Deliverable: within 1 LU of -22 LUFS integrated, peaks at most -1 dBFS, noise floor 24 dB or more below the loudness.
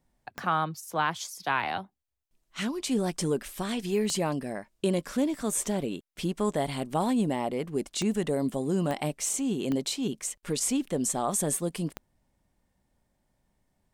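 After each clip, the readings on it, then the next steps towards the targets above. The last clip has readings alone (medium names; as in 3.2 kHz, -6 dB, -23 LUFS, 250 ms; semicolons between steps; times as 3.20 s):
clicks found 6; loudness -29.5 LUFS; peak level -14.0 dBFS; loudness target -22.0 LUFS
-> de-click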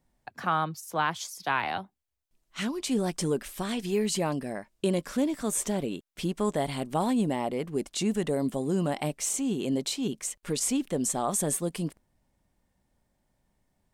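clicks found 0; loudness -29.5 LUFS; peak level -14.0 dBFS; loudness target -22.0 LUFS
-> trim +7.5 dB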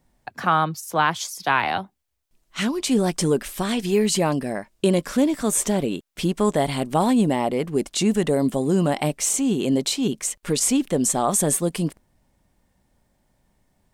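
loudness -22.0 LUFS; peak level -6.5 dBFS; noise floor -69 dBFS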